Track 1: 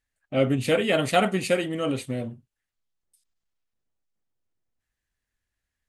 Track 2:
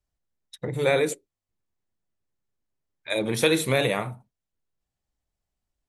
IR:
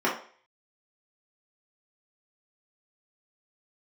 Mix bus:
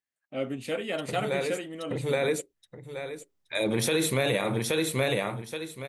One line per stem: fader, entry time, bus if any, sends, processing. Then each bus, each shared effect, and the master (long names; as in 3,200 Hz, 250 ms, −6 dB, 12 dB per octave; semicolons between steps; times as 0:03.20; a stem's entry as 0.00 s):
−9.0 dB, 0.00 s, no send, no echo send, high-pass filter 180 Hz
+1.5 dB, 0.45 s, no send, echo send −4 dB, automatic ducking −11 dB, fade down 1.60 s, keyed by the first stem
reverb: not used
echo: repeating echo 824 ms, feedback 24%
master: brickwall limiter −16 dBFS, peak gain reduction 10.5 dB